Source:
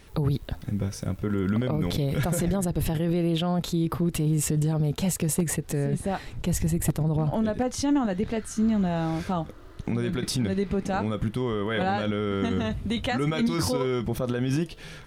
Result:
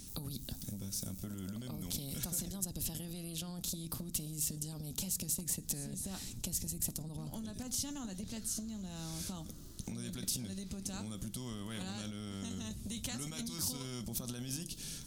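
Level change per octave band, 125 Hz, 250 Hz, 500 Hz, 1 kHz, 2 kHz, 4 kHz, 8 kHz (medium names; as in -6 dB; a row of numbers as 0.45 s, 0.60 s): -17.0 dB, -17.0 dB, -23.0 dB, -22.0 dB, -18.0 dB, -7.5 dB, -2.5 dB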